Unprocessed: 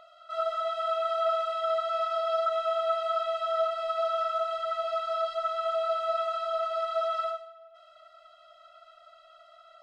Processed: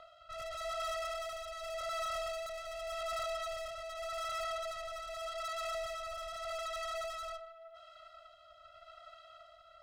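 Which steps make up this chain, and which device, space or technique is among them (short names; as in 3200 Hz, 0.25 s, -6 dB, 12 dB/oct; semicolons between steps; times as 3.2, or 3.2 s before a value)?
overdriven rotary cabinet (tube stage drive 41 dB, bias 0.65; rotary speaker horn 0.85 Hz); gain +5 dB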